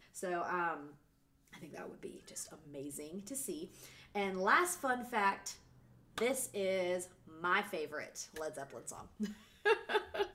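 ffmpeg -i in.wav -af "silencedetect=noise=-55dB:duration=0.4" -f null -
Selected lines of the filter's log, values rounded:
silence_start: 0.95
silence_end: 1.48 | silence_duration: 0.52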